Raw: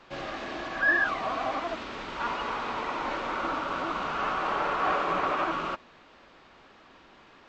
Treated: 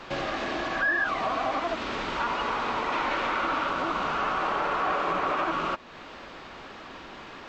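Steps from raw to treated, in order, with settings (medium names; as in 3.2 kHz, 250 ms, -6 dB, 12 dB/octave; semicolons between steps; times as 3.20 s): 2.92–3.71 s: peaking EQ 2.3 kHz +5 dB 2 oct; in parallel at +2 dB: peak limiter -21 dBFS, peak gain reduction 7 dB; on the sum: compression 2:1, threshold -37 dBFS, peak gain reduction 12 dB; trim +4.5 dB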